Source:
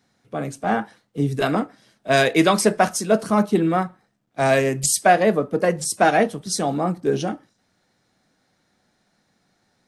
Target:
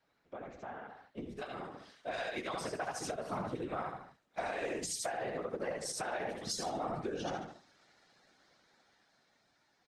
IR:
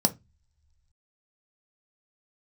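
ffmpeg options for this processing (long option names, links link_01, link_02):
-af "asetnsamples=nb_out_samples=441:pad=0,asendcmd='1.3 lowpass f 5800',lowpass=3200,aecho=1:1:72|144|216|288:0.708|0.212|0.0637|0.0191,acompressor=threshold=-28dB:ratio=12,highpass=frequency=580:poles=1,afftfilt=real='hypot(re,im)*cos(2*PI*random(0))':imag='hypot(re,im)*sin(2*PI*random(1))':win_size=512:overlap=0.75,alimiter=level_in=10dB:limit=-24dB:level=0:latency=1:release=392,volume=-10dB,dynaudnorm=framelen=210:gausssize=17:maxgain=8dB" -ar 48000 -c:a libopus -b:a 20k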